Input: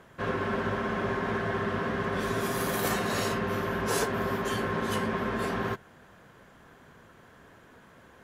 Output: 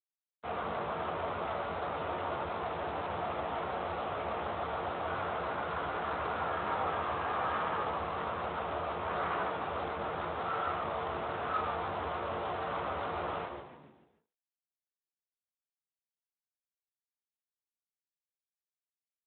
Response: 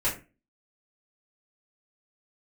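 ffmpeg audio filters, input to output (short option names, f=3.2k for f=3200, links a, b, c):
-filter_complex "[0:a]asetrate=18846,aresample=44100,lowpass=f=1.3k:t=q:w=3.4,bandreject=f=48.57:t=h:w=4,bandreject=f=97.14:t=h:w=4,bandreject=f=145.71:t=h:w=4,bandreject=f=194.28:t=h:w=4,bandreject=f=242.85:t=h:w=4,bandreject=f=291.42:t=h:w=4,bandreject=f=339.99:t=h:w=4,bandreject=f=388.56:t=h:w=4,bandreject=f=437.13:t=h:w=4,bandreject=f=485.7:t=h:w=4,bandreject=f=534.27:t=h:w=4,bandreject=f=582.84:t=h:w=4,bandreject=f=631.41:t=h:w=4,bandreject=f=679.98:t=h:w=4,bandreject=f=728.55:t=h:w=4,aresample=16000,asoftclip=type=tanh:threshold=-25.5dB,aresample=44100,acrusher=bits=5:mix=0:aa=0.5,equalizer=f=125:t=o:w=1:g=-7,equalizer=f=250:t=o:w=1:g=-8,equalizer=f=1k:t=o:w=1:g=4,asplit=2[a][b];[b]asplit=5[c][d][e][f][g];[c]adelay=146,afreqshift=-100,volume=-7dB[h];[d]adelay=292,afreqshift=-200,volume=-13.7dB[i];[e]adelay=438,afreqshift=-300,volume=-20.5dB[j];[f]adelay=584,afreqshift=-400,volume=-27.2dB[k];[g]adelay=730,afreqshift=-500,volume=-34dB[l];[h][i][j][k][l]amix=inputs=5:normalize=0[m];[a][m]amix=inputs=2:normalize=0,adynamicequalizer=threshold=0.00251:dfrequency=170:dqfactor=1:tfrequency=170:tqfactor=1:attack=5:release=100:ratio=0.375:range=2:mode=cutabove:tftype=bell,asplit=2[n][o];[o]adelay=14,volume=-11dB[p];[n][p]amix=inputs=2:normalize=0,asplit=2[q][r];[r]adelay=140,highpass=300,lowpass=3.4k,asoftclip=type=hard:threshold=-32dB,volume=-24dB[s];[q][s]amix=inputs=2:normalize=0,volume=-3dB" -ar 8000 -c:a libspeex -b:a 24k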